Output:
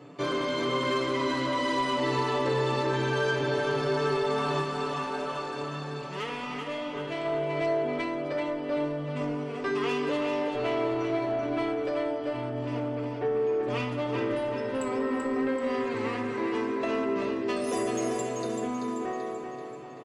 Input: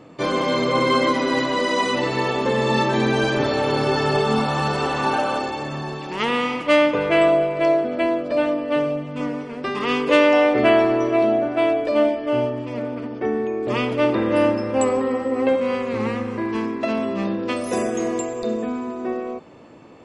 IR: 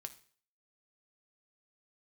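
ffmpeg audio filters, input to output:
-filter_complex "[0:a]highpass=140,aecho=1:1:7:0.77,acompressor=threshold=-20dB:ratio=5,asoftclip=type=tanh:threshold=-18dB,asplit=3[a][b][c];[a]afade=t=out:st=4.61:d=0.02[d];[b]flanger=delay=9.6:depth=6.3:regen=82:speed=1.9:shape=triangular,afade=t=in:st=4.61:d=0.02,afade=t=out:st=7.24:d=0.02[e];[c]afade=t=in:st=7.24:d=0.02[f];[d][e][f]amix=inputs=3:normalize=0,aecho=1:1:385|770|1155|1540|1925|2310:0.501|0.241|0.115|0.0554|0.0266|0.0128[g];[1:a]atrim=start_sample=2205[h];[g][h]afir=irnorm=-1:irlink=0"

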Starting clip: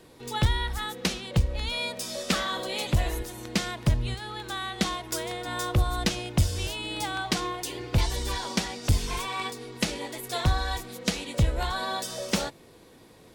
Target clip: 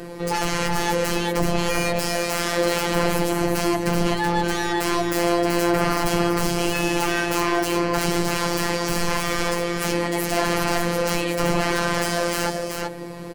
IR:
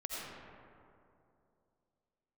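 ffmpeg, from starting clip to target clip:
-filter_complex "[0:a]aeval=exprs='0.211*sin(PI/2*7.94*val(0)/0.211)':c=same,highshelf=f=2.3k:g=-9.5,bandreject=f=3.6k:w=5.8,asplit=2[a][b];[b]aecho=0:1:380:0.596[c];[a][c]amix=inputs=2:normalize=0,afftfilt=real='hypot(re,im)*cos(PI*b)':imag='0':win_size=1024:overlap=0.75"

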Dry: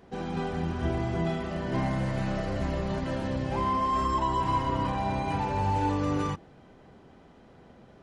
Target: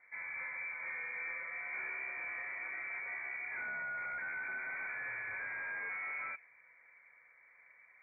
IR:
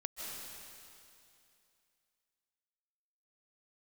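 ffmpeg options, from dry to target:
-af "highpass=f=140:w=0.5412,highpass=f=140:w=1.3066,asoftclip=type=hard:threshold=-30dB,lowpass=f=2.1k:t=q:w=0.5098,lowpass=f=2.1k:t=q:w=0.6013,lowpass=f=2.1k:t=q:w=0.9,lowpass=f=2.1k:t=q:w=2.563,afreqshift=-2500,volume=-8.5dB"

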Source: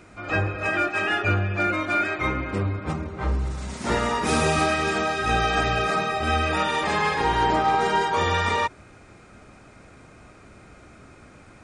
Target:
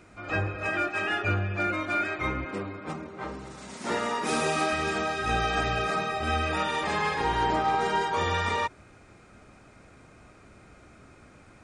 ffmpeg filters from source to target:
-filter_complex "[0:a]asettb=1/sr,asplit=3[a][b][c];[a]atrim=end=2.454[d];[b]atrim=start=2.45:end=4.73,asetpts=PTS-STARTPTS,afade=t=in:d=0.004:c=qsin,afade=t=out:st=2.276:d=0.004:c=qsin,highpass=200[e];[c]atrim=start=4.726[f];[d][e]acrossfade=d=0.004:c1=hsin:c2=qsin[g];[g][f]acrossfade=d=0.004:c1=qsin:c2=hsin,volume=-4.5dB"

